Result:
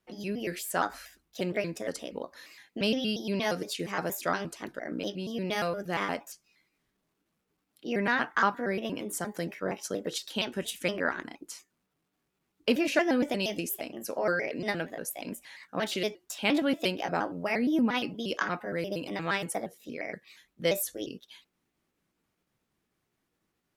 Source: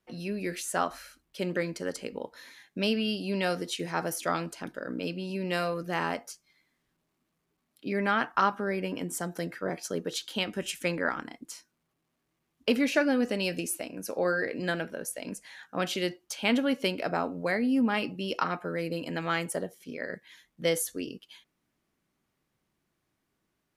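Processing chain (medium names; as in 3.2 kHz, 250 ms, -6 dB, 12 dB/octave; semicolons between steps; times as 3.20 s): pitch shift switched off and on +3 st, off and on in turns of 117 ms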